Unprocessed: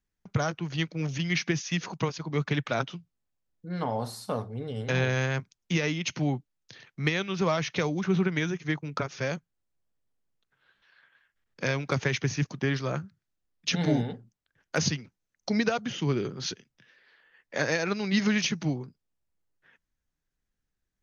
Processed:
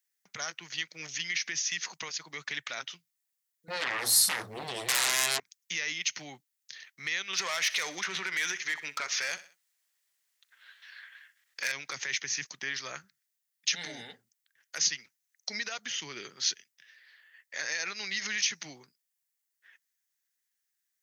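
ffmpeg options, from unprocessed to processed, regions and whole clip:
-filter_complex "[0:a]asettb=1/sr,asplit=3[a][b][c];[a]atrim=end=3.684[d];[b]atrim=start=3.68:end=5.4,asetpts=PTS-STARTPTS,afade=t=in:d=0.004:c=qsin,afade=t=out:st=1.716:d=0.004:c=qsin,equalizer=f=130:w=0.61:g=11,aeval=exprs='0.316*sin(PI/2*7.08*val(0)/0.316)':c=same[e];[c]atrim=start=5.396[f];[d][e]acrossfade=d=0.004:c1=hsin:c2=qsin[g];[g][f]acrossfade=d=0.004:c1=qsin:c2=hsin,asettb=1/sr,asplit=3[h][i][j];[h]atrim=end=7.334[k];[i]atrim=start=7.33:end=11.72,asetpts=PTS-STARTPTS,afade=t=in:d=0.004:c=qsin,afade=t=out:st=4.386:d=0.004:c=qsin,asplit=2[l][m];[m]highpass=f=720:p=1,volume=17dB,asoftclip=type=tanh:threshold=-13dB[n];[l][n]amix=inputs=2:normalize=0,lowpass=f=5.1k:p=1,volume=-6dB,aecho=1:1:63|126|189:0.1|0.041|0.0168,atrim=end_sample=193599[o];[j]atrim=start=11.716[p];[k][o]acrossfade=d=0.004:c1=hsin:c2=qsin[q];[q][p]acrossfade=d=0.004:c1=qsin:c2=hsin,equalizer=f=1.9k:w=3.2:g=7.5,alimiter=limit=-19.5dB:level=0:latency=1:release=74,aderivative,volume=9dB"

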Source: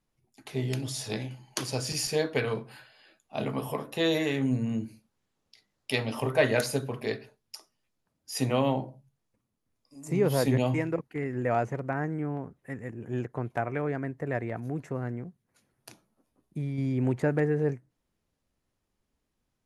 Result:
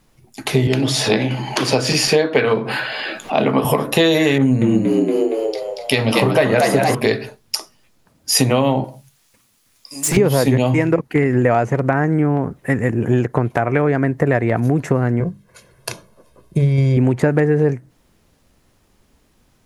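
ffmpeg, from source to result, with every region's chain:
-filter_complex "[0:a]asettb=1/sr,asplit=3[a][b][c];[a]atrim=end=0.674[d];[b]atrim=start=0.67:end=3.65,asetpts=PTS-STARTPTS,afade=t=in:d=0.004:c=qsin,afade=t=out:st=2.976:d=0.004:c=qsin,acrossover=split=160 4100:gain=0.2 1 0.224[e][f][g];[e][f][g]amix=inputs=3:normalize=0,acompressor=mode=upward:threshold=-34dB:ratio=2.5:attack=3.2:release=140:knee=2.83:detection=peak[h];[c]atrim=start=3.646[i];[d][h]acrossfade=d=0.004:c1=hsin:c2=qsin[j];[j][i]acrossfade=d=0.004:c1=qsin:c2=hsin,asettb=1/sr,asplit=3[k][l][m];[k]atrim=end=4.384[n];[l]atrim=start=4.38:end=6.95,asetpts=PTS-STARTPTS,afade=t=in:d=0.004:c=qsin,afade=t=out:st=2.566:d=0.004:c=qsin,asplit=8[o][p][q][r][s][t][u][v];[p]adelay=233,afreqshift=73,volume=-4dB[w];[q]adelay=466,afreqshift=146,volume=-9.5dB[x];[r]adelay=699,afreqshift=219,volume=-15dB[y];[s]adelay=932,afreqshift=292,volume=-20.5dB[z];[t]adelay=1165,afreqshift=365,volume=-26.1dB[aa];[u]adelay=1398,afreqshift=438,volume=-31.6dB[ab];[v]adelay=1631,afreqshift=511,volume=-37.1dB[ac];[o][w][x][y][z][aa][ab][ac]amix=inputs=8:normalize=0,atrim=end_sample=113337,adynamicequalizer=threshold=0.01:dfrequency=2000:dqfactor=0.7:tfrequency=2000:tqfactor=0.7:attack=5:release=100:ratio=0.375:range=2.5:mode=cutabove:tftype=highshelf[ad];[m]atrim=start=6.946[ae];[n][ad]acrossfade=d=0.004:c1=hsin:c2=qsin[af];[af][ae]acrossfade=d=0.004:c1=qsin:c2=hsin,asettb=1/sr,asplit=3[ag][ah][ai];[ag]atrim=end=8.844[aj];[ah]atrim=start=8.84:end=10.17,asetpts=PTS-STARTPTS,afade=t=in:d=0.004:c=qsin,afade=t=out:st=1.326:d=0.004:c=qsin,tiltshelf=f=1.1k:g=-9.5,asoftclip=type=hard:threshold=-37dB[ak];[ai]atrim=start=10.166[al];[aj][ak]acrossfade=d=0.004:c1=hsin:c2=qsin[am];[am][al]acrossfade=d=0.004:c1=qsin:c2=hsin,asettb=1/sr,asplit=3[an][ao][ap];[an]atrim=end=15.204[aq];[ao]atrim=start=15.2:end=16.97,asetpts=PTS-STARTPTS,afade=t=in:d=0.004:c=qsin,afade=t=out:st=1.766:d=0.004:c=qsin,highshelf=f=7.5k:g=-5.5,bandreject=f=50:t=h:w=6,bandreject=f=100:t=h:w=6,bandreject=f=150:t=h:w=6,bandreject=f=200:t=h:w=6,bandreject=f=250:t=h:w=6,bandreject=f=300:t=h:w=6,aecho=1:1:1.9:0.7,atrim=end_sample=78057[ar];[ap]atrim=start=16.966[as];[aq][ar]acrossfade=d=0.004:c1=hsin:c2=qsin[at];[at][as]acrossfade=d=0.004:c1=qsin:c2=hsin,acompressor=threshold=-34dB:ratio=6,alimiter=level_in=23dB:limit=-1dB:release=50:level=0:latency=1,volume=-1dB"

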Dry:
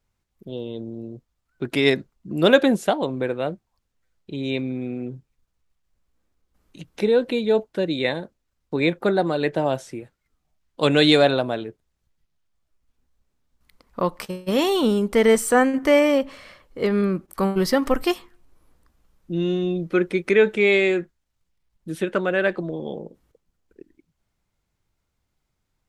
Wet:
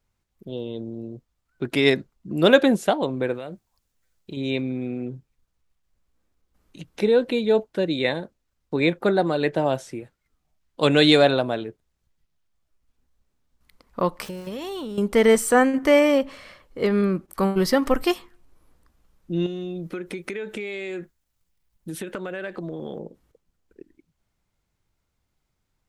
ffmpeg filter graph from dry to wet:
-filter_complex "[0:a]asettb=1/sr,asplit=3[a][b][c];[a]atrim=end=3.344[d];[b]atrim=start=3.34:end=4.37,asetpts=PTS-STARTPTS,afade=t=in:d=0.004:c=qsin,afade=t=out:st=1.026:d=0.004:c=qsin,highshelf=f=5.2k:g=10,acompressor=threshold=-29dB:ratio=12:attack=3.2:release=140:knee=1:detection=peak[e];[c]atrim=start=4.366[f];[d][e]acrossfade=d=0.004:c1=hsin:c2=qsin[g];[g][f]acrossfade=d=0.004:c1=qsin:c2=hsin,asettb=1/sr,asplit=3[h][i][j];[h]atrim=end=14.254[k];[i]atrim=start=14.25:end=14.98,asetpts=PTS-STARTPTS,afade=t=in:d=0.004:c=qsin,afade=t=out:st=0.726:d=0.004:c=qsin,aeval=exprs='val(0)+0.5*0.0126*sgn(val(0))':c=same,acompressor=threshold=-29dB:ratio=10:attack=3.2:release=140:knee=1:detection=peak,aeval=exprs='val(0)+0.00126*(sin(2*PI*50*n/s)+sin(2*PI*2*50*n/s)/2+sin(2*PI*3*50*n/s)/3+sin(2*PI*4*50*n/s)/4+sin(2*PI*5*50*n/s)/5)':c=same[l];[j]atrim=start=14.976[m];[k][l]acrossfade=d=0.004:c1=hsin:c2=qsin[n];[n][m]acrossfade=d=0.004:c1=qsin:c2=hsin,asettb=1/sr,asplit=3[o][p][q];[o]atrim=end=19.464[r];[p]atrim=start=19.46:end=22.99,asetpts=PTS-STARTPTS,afade=t=in:d=0.004:c=qsin,afade=t=out:st=3.526:d=0.004:c=qsin,highshelf=f=9.1k:g=11,acompressor=threshold=-27dB:ratio=16:attack=3.2:release=140:knee=1:detection=peak[s];[q]atrim=start=22.986[t];[r][s]acrossfade=d=0.004:c1=hsin:c2=qsin[u];[u][t]acrossfade=d=0.004:c1=qsin:c2=hsin"

